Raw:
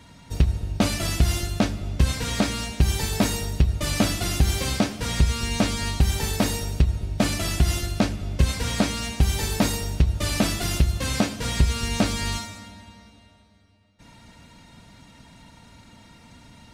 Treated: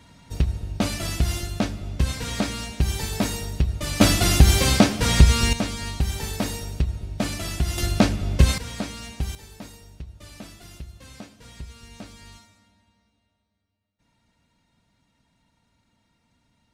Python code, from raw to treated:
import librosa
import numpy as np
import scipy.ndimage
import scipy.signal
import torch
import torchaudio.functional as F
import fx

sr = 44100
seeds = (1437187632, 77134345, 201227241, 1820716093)

y = fx.gain(x, sr, db=fx.steps((0.0, -2.5), (4.01, 6.5), (5.53, -4.0), (7.78, 4.0), (8.58, -8.0), (9.35, -19.0)))